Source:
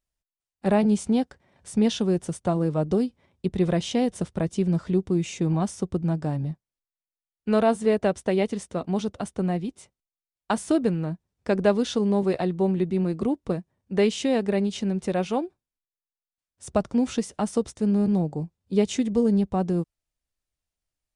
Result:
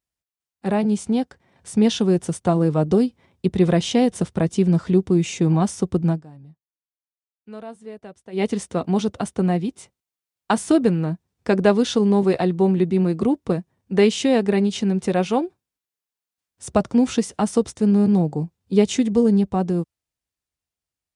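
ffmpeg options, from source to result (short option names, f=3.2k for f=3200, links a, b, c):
-filter_complex "[0:a]asplit=3[a][b][c];[a]atrim=end=6.23,asetpts=PTS-STARTPTS,afade=t=out:st=6.09:d=0.14:silence=0.0841395[d];[b]atrim=start=6.23:end=8.32,asetpts=PTS-STARTPTS,volume=-21.5dB[e];[c]atrim=start=8.32,asetpts=PTS-STARTPTS,afade=t=in:d=0.14:silence=0.0841395[f];[d][e][f]concat=n=3:v=0:a=1,highpass=67,bandreject=f=590:w=12,dynaudnorm=f=150:g=21:m=6dB"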